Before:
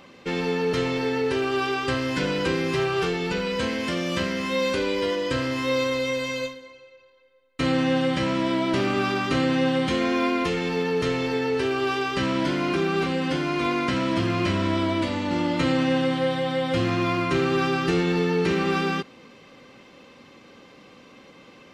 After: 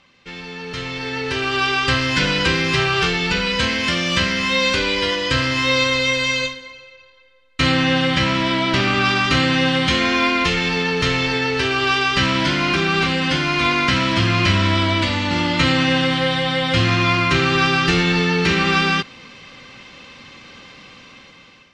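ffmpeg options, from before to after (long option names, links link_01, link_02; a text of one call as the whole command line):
ffmpeg -i in.wav -filter_complex "[0:a]asettb=1/sr,asplit=3[link_01][link_02][link_03];[link_01]atrim=end=7.744[link_04];[link_02]atrim=start=7.74:end=9.06,asetpts=PTS-STARTPTS,afade=type=in:duration=0.004:curve=qsin,afade=type=out:start_time=1.316:duration=0.004:curve=qsin,highshelf=frequency=7600:gain=-5.5[link_05];[link_03]atrim=start=9.056[link_06];[link_04][link_05]acrossfade=duration=0.004:curve1=hsin:curve2=qsin[link_07];[link_07][link_06]acrossfade=duration=0.004:curve1=qsin:curve2=hsin,lowpass=5900,equalizer=frequency=400:width_type=o:width=2.9:gain=-14,dynaudnorm=framelen=480:gausssize=5:maxgain=15dB" out.wav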